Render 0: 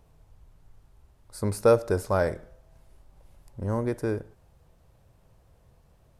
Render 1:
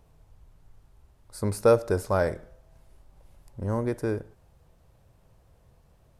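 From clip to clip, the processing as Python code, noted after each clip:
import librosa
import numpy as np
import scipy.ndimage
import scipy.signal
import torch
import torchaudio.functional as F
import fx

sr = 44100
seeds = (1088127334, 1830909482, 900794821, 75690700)

y = x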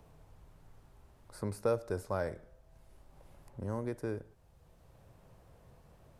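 y = fx.band_squash(x, sr, depth_pct=40)
y = F.gain(torch.from_numpy(y), -9.0).numpy()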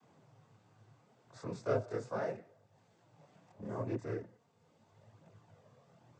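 y = fx.noise_vocoder(x, sr, seeds[0], bands=16)
y = fx.chorus_voices(y, sr, voices=2, hz=0.38, base_ms=23, depth_ms=4.8, mix_pct=60)
y = F.gain(torch.from_numpy(y), 1.5).numpy()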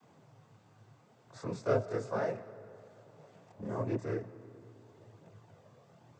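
y = fx.rev_freeverb(x, sr, rt60_s=3.7, hf_ratio=0.5, predelay_ms=110, drr_db=16.5)
y = F.gain(torch.from_numpy(y), 3.5).numpy()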